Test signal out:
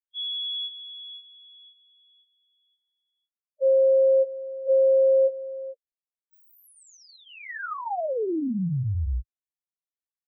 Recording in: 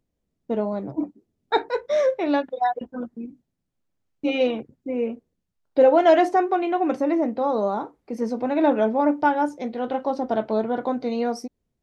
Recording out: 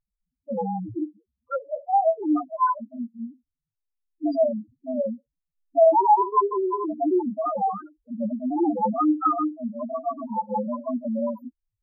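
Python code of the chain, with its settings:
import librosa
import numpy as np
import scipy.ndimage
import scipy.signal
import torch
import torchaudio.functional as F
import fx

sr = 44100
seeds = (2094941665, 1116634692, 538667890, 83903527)

y = fx.partial_stretch(x, sr, pct=130)
y = fx.spec_topn(y, sr, count=2)
y = fx.high_shelf_res(y, sr, hz=2300.0, db=-10.5, q=1.5)
y = F.gain(torch.from_numpy(y), 3.5).numpy()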